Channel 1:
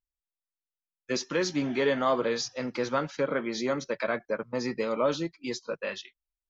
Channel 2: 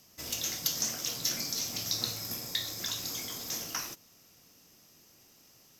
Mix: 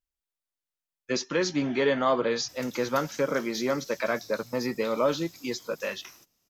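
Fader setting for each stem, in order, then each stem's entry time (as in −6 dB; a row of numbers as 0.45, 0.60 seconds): +1.5, −14.0 decibels; 0.00, 2.30 seconds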